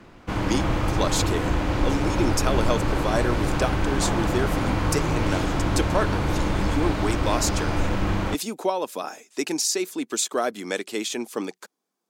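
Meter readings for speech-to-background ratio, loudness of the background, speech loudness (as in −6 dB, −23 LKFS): −2.5 dB, −25.5 LKFS, −28.0 LKFS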